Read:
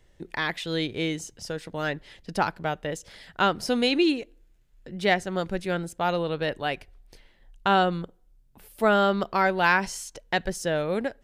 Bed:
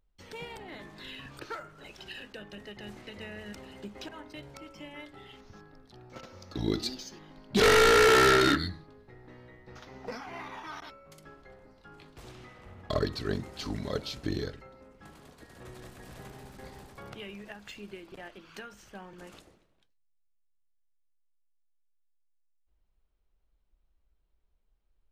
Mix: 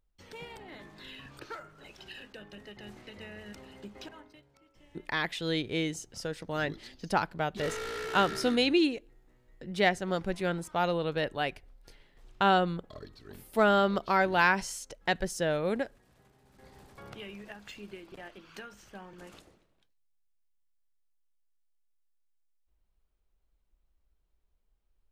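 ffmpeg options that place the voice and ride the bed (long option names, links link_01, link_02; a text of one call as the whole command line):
ffmpeg -i stem1.wav -i stem2.wav -filter_complex "[0:a]adelay=4750,volume=-3dB[link_01];[1:a]volume=13.5dB,afade=type=out:start_time=4.06:duration=0.38:silence=0.188365,afade=type=in:start_time=16.43:duration=0.74:silence=0.149624[link_02];[link_01][link_02]amix=inputs=2:normalize=0" out.wav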